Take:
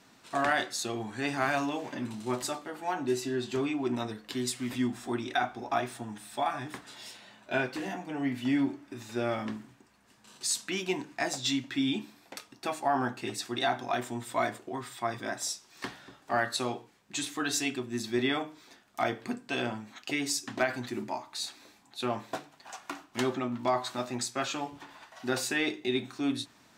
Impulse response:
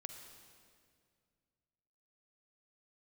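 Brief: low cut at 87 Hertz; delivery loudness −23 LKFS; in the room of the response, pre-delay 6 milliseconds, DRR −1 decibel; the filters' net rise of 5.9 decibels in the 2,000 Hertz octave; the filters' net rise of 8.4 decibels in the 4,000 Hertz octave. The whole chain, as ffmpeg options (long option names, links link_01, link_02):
-filter_complex "[0:a]highpass=87,equalizer=frequency=2000:width_type=o:gain=5.5,equalizer=frequency=4000:width_type=o:gain=8.5,asplit=2[link_01][link_02];[1:a]atrim=start_sample=2205,adelay=6[link_03];[link_02][link_03]afir=irnorm=-1:irlink=0,volume=5dB[link_04];[link_01][link_04]amix=inputs=2:normalize=0,volume=2.5dB"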